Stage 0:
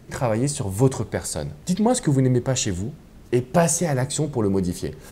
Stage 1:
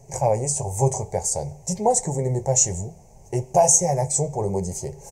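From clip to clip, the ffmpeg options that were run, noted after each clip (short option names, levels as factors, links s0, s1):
-af "flanger=delay=7.3:depth=6.1:regen=-47:speed=0.6:shape=sinusoidal,firequalizer=gain_entry='entry(150,0);entry(280,-17);entry(410,1);entry(840,9);entry(1300,-22);entry(2200,-4);entry(3500,-19);entry(6200,12);entry(11000,-2)':delay=0.05:min_phase=1,volume=1.33"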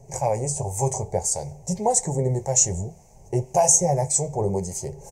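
-filter_complex "[0:a]acrossover=split=920[s0][s1];[s0]aeval=exprs='val(0)*(1-0.5/2+0.5/2*cos(2*PI*1.8*n/s))':c=same[s2];[s1]aeval=exprs='val(0)*(1-0.5/2-0.5/2*cos(2*PI*1.8*n/s))':c=same[s3];[s2][s3]amix=inputs=2:normalize=0,volume=1.19"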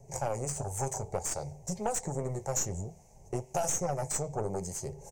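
-filter_complex "[0:a]aeval=exprs='0.668*(cos(1*acos(clip(val(0)/0.668,-1,1)))-cos(1*PI/2))+0.0473*(cos(8*acos(clip(val(0)/0.668,-1,1)))-cos(8*PI/2))':c=same,acrossover=split=560|5900[s0][s1][s2];[s0]acompressor=threshold=0.0447:ratio=4[s3];[s1]acompressor=threshold=0.0447:ratio=4[s4];[s2]acompressor=threshold=0.0251:ratio=4[s5];[s3][s4][s5]amix=inputs=3:normalize=0,volume=0.501"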